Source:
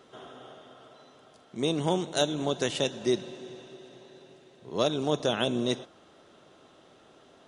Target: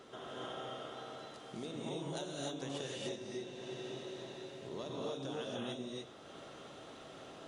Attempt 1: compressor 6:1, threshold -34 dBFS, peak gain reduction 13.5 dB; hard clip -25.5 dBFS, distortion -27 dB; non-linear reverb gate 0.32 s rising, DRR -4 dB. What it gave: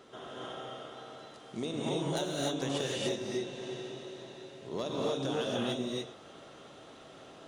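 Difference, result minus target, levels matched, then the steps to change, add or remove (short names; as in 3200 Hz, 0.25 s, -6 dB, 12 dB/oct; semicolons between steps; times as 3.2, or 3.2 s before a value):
compressor: peak gain reduction -8.5 dB
change: compressor 6:1, threshold -44 dBFS, peak gain reduction 22 dB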